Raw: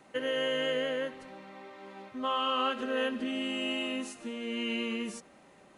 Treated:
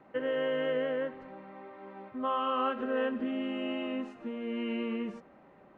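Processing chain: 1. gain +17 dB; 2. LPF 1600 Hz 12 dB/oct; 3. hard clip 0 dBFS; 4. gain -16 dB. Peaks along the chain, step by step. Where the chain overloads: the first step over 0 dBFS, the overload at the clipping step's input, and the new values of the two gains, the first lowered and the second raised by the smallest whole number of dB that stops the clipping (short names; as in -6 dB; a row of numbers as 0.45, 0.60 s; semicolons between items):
-1.5, -3.0, -3.0, -19.0 dBFS; no overload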